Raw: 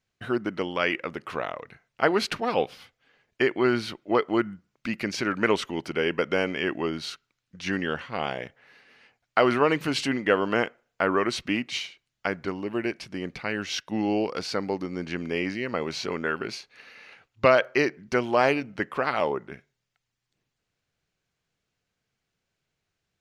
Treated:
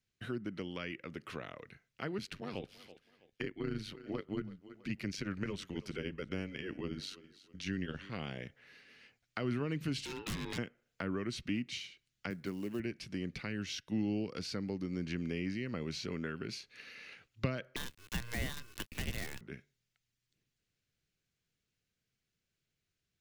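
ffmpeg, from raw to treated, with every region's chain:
ffmpeg -i in.wav -filter_complex "[0:a]asettb=1/sr,asplit=3[link_01][link_02][link_03];[link_01]atrim=end=2.184[link_04];[link_02]atrim=start=2.18:end=8.1,asetpts=PTS-STARTPTS,afade=type=in:duration=0.004:curve=qsin,afade=type=out:start_time=5.916:duration=0.004:curve=qsin,tremolo=f=96:d=0.824,aecho=1:1:327|654:0.0794|0.0246,atrim=end_sample=261072[link_05];[link_03]atrim=start=8.096[link_06];[link_04][link_05]acrossfade=duration=0.004:curve1=hsin:curve2=qsin[link_07];[link_07][link_06]acrossfade=duration=0.004:curve1=qsin:curve2=hsin,asettb=1/sr,asplit=3[link_08][link_09][link_10];[link_08]atrim=end=10.054[link_11];[link_09]atrim=start=10.05:end=10.58,asetpts=PTS-STARTPTS,afade=type=in:duration=0.004:curve=qsin,afade=type=out:start_time=0.526:duration=0.004:curve=qsin,lowpass=frequency=3500:width_type=q:width=3.6,aeval=exprs='0.0841*(abs(mod(val(0)/0.0841+3,4)-2)-1)':channel_layout=same,aeval=exprs='val(0)*sin(2*PI*640*n/s)':channel_layout=same[link_12];[link_10]atrim=start=10.576[link_13];[link_11][link_12]acrossfade=duration=0.004:curve1=hsin:curve2=qsin[link_14];[link_14][link_13]acrossfade=duration=0.004:curve1=qsin:curve2=hsin,asettb=1/sr,asplit=3[link_15][link_16][link_17];[link_15]atrim=end=12.304[link_18];[link_16]atrim=start=12.3:end=12.8,asetpts=PTS-STARTPTS,afade=type=in:duration=0.004:curve=qsin,afade=type=out:start_time=0.496:duration=0.004:curve=qsin,highpass=130,acrusher=bits=6:mode=log:mix=0:aa=0.000001[link_19];[link_17]atrim=start=12.796[link_20];[link_18][link_19]acrossfade=duration=0.004:curve1=hsin:curve2=qsin[link_21];[link_21][link_20]acrossfade=duration=0.004:curve1=qsin:curve2=hsin,asettb=1/sr,asplit=3[link_22][link_23][link_24];[link_22]atrim=end=17.764[link_25];[link_23]atrim=start=17.76:end=19.41,asetpts=PTS-STARTPTS,afade=type=in:duration=0.004:curve=qsin,afade=type=out:start_time=1.646:duration=0.004:curve=qsin,aecho=1:1:1.3:0.39,atrim=end_sample=72765,aeval=exprs='val(0)*sin(2*PI*1300*n/s)':channel_layout=same,acrusher=bits=5:dc=4:mix=0:aa=0.000001[link_26];[link_24]atrim=start=19.406[link_27];[link_25][link_26]acrossfade=duration=0.004:curve1=hsin:curve2=qsin[link_28];[link_28][link_27]acrossfade=duration=0.004:curve1=qsin:curve2=hsin,dynaudnorm=framelen=830:gausssize=11:maxgain=11.5dB,equalizer=frequency=850:width_type=o:width=1.4:gain=-11.5,acrossover=split=220[link_29][link_30];[link_30]acompressor=threshold=-37dB:ratio=4[link_31];[link_29][link_31]amix=inputs=2:normalize=0,volume=-4dB" out.wav

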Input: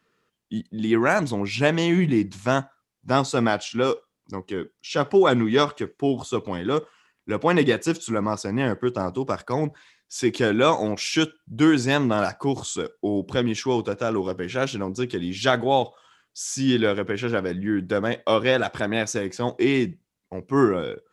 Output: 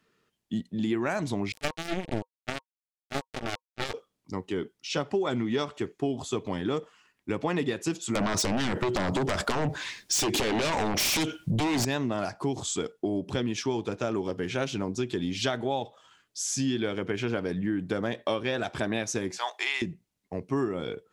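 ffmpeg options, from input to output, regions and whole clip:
ffmpeg -i in.wav -filter_complex "[0:a]asettb=1/sr,asplit=3[link_01][link_02][link_03];[link_01]atrim=end=1.524[link_04];[link_02]atrim=start=1.52:end=3.94,asetpts=PTS-STARTPTS,afade=type=in:duration=0.004:curve=qsin,afade=type=out:start_time=2.416:duration=0.004:curve=qsin,aeval=exprs='(tanh(5.01*val(0)+0.45)-tanh(0.45))/5.01':channel_layout=same,acrusher=bits=2:mix=0:aa=0.5,asuperstop=centerf=1000:order=12:qfactor=8[link_05];[link_03]atrim=start=3.936[link_06];[link_04][link_05]acrossfade=duration=0.004:curve1=hsin:curve2=qsin[link_07];[link_07][link_06]acrossfade=duration=0.004:curve1=qsin:curve2=hsin,asettb=1/sr,asplit=3[link_08][link_09][link_10];[link_08]atrim=end=8.154[link_11];[link_09]atrim=start=8.15:end=11.85,asetpts=PTS-STARTPTS,afade=type=in:duration=0.004:curve=qsin,afade=type=out:start_time=3.696:duration=0.004:curve=qsin,acompressor=threshold=-26dB:ratio=16:attack=3.2:release=140:knee=1:detection=peak,aeval=exprs='0.168*sin(PI/2*5.62*val(0)/0.168)':channel_layout=same[link_12];[link_10]atrim=start=11.846[link_13];[link_11][link_12]acrossfade=duration=0.004:curve1=hsin:curve2=qsin[link_14];[link_14][link_13]acrossfade=duration=0.004:curve1=qsin:curve2=hsin,asettb=1/sr,asplit=3[link_15][link_16][link_17];[link_15]atrim=end=19.384[link_18];[link_16]atrim=start=19.38:end=19.82,asetpts=PTS-STARTPTS,afade=type=in:duration=0.004:curve=qsin,afade=type=out:start_time=0.436:duration=0.004:curve=qsin,highpass=frequency=840:width=0.5412,highpass=frequency=840:width=1.3066,acontrast=33[link_19];[link_17]atrim=start=19.816[link_20];[link_18][link_19]acrossfade=duration=0.004:curve1=hsin:curve2=qsin[link_21];[link_21][link_20]acrossfade=duration=0.004:curve1=qsin:curve2=hsin,equalizer=frequency=1300:width=1.5:gain=-3.5,bandreject=frequency=500:width=12,acompressor=threshold=-25dB:ratio=6" out.wav

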